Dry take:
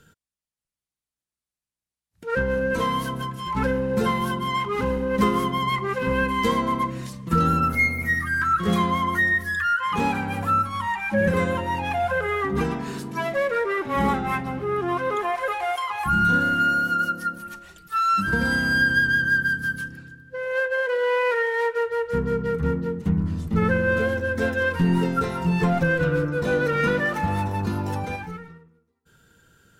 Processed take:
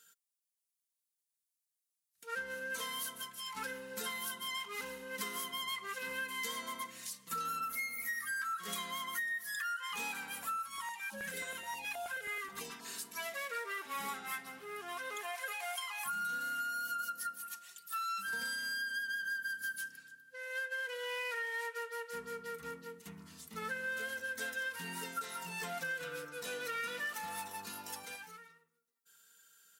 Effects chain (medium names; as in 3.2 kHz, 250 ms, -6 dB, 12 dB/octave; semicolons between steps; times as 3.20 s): differentiator; comb 4.4 ms, depth 42%; compression 10:1, threshold -36 dBFS, peak gain reduction 11 dB; 10.57–12.85 s: step-sequenced notch 9.4 Hz 230–2000 Hz; trim +1 dB